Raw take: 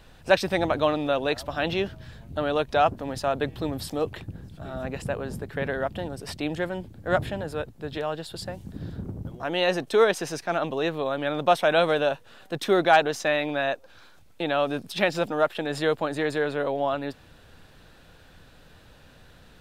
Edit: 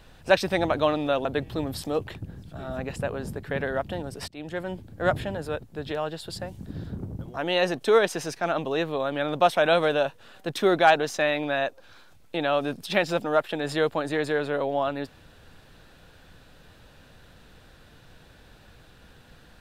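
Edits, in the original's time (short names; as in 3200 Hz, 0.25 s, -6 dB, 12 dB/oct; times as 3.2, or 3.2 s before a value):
1.25–3.31 cut
6.34–6.79 fade in, from -21 dB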